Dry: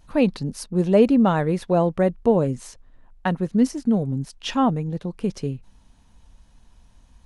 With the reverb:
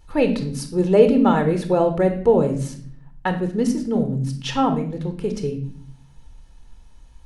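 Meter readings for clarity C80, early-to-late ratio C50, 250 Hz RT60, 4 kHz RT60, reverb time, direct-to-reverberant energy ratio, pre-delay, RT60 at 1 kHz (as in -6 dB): 13.5 dB, 9.5 dB, 0.95 s, 0.45 s, 0.55 s, 6.5 dB, 24 ms, 0.45 s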